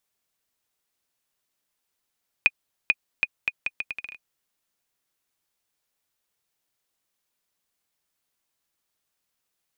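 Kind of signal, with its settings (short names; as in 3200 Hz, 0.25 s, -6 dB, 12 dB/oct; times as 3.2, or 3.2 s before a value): bouncing ball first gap 0.44 s, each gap 0.75, 2470 Hz, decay 42 ms -4.5 dBFS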